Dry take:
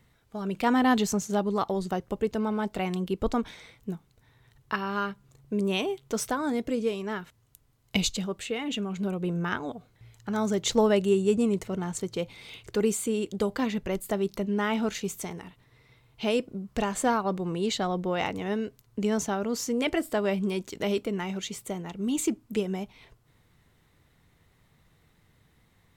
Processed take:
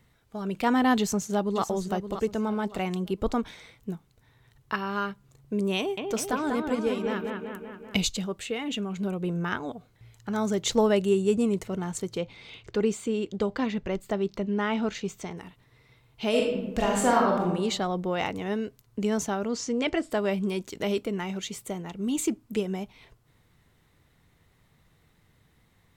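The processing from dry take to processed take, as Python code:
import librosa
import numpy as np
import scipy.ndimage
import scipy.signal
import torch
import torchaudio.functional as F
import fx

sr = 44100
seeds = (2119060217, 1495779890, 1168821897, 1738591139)

y = fx.echo_throw(x, sr, start_s=0.98, length_s=0.64, ms=570, feedback_pct=30, wet_db=-9.5)
y = fx.echo_bbd(y, sr, ms=192, stages=4096, feedback_pct=62, wet_db=-4.0, at=(5.78, 8.02))
y = fx.moving_average(y, sr, points=4, at=(12.18, 15.37))
y = fx.reverb_throw(y, sr, start_s=16.29, length_s=1.15, rt60_s=0.95, drr_db=-2.0)
y = fx.lowpass(y, sr, hz=7200.0, slope=24, at=(19.48, 20.11))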